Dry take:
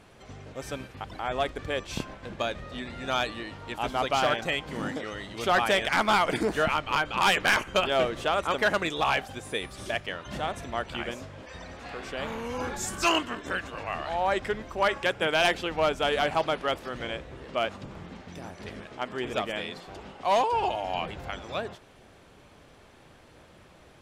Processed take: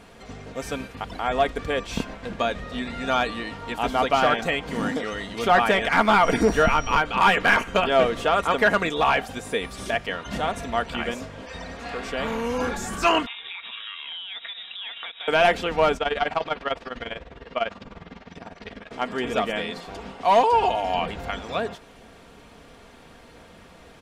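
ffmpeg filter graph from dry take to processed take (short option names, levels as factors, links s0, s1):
-filter_complex "[0:a]asettb=1/sr,asplit=3[s0][s1][s2];[s0]atrim=end=6.234[s3];[s1]atrim=start=6.23:end=7.01,asetpts=PTS-STARTPTS,afade=t=in:d=0.004:c=qsin,afade=t=out:st=0.776:d=0.004:c=qsin,lowshelf=f=76:g=11.5,aeval=exprs='val(0)+0.00891*sin(2*PI*5700*n/s)':c=same[s4];[s2]atrim=start=7.006[s5];[s3][s4]acrossfade=d=0.004:c1=hsin:c2=qsin[s6];[s6][s5]acrossfade=d=0.004:c1=qsin:c2=hsin,asettb=1/sr,asplit=3[s7][s8][s9];[s7]atrim=end=13.264[s10];[s8]atrim=start=13.26:end=15.28,asetpts=PTS-STARTPTS,afade=t=in:d=0.004:c=qsin,afade=t=out:st=2.016:d=0.004:c=qsin,aeval=exprs='sgn(val(0))*max(abs(val(0))-0.00251,0)':c=same,acompressor=threshold=0.0158:ratio=16:attack=3.2:release=140:knee=1:detection=peak,lowpass=f=3300:t=q:w=0.5098,lowpass=f=3300:t=q:w=0.6013,lowpass=f=3300:t=q:w=0.9,lowpass=f=3300:t=q:w=2.563,afreqshift=-3900[s11];[s9]atrim=start=15.276[s12];[s10][s11]acrossfade=d=0.004:c1=hsin:c2=qsin[s13];[s13][s12]acrossfade=d=0.004:c1=qsin:c2=hsin,asettb=1/sr,asplit=3[s14][s15][s16];[s14]atrim=end=15.974[s17];[s15]atrim=start=15.97:end=18.91,asetpts=PTS-STARTPTS,afade=t=in:d=0.004:c=qsin,afade=t=out:st=2.936:d=0.004:c=qsin,tremolo=f=20:d=0.85,lowpass=4700,equalizer=f=190:w=0.46:g=-4[s18];[s16]atrim=start=18.906[s19];[s17][s18]acrossfade=d=0.004:c1=hsin:c2=qsin[s20];[s20][s19]acrossfade=d=0.004:c1=qsin:c2=hsin,acontrast=34,aecho=1:1:4.3:0.42,acrossover=split=2600[s21][s22];[s22]acompressor=threshold=0.02:ratio=4:attack=1:release=60[s23];[s21][s23]amix=inputs=2:normalize=0"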